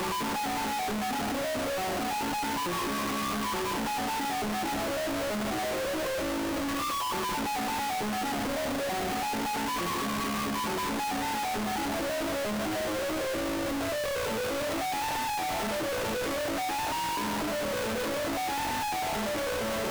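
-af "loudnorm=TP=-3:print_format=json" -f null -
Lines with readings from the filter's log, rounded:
"input_i" : "-30.4",
"input_tp" : "-26.4",
"input_lra" : "0.2",
"input_thresh" : "-40.4",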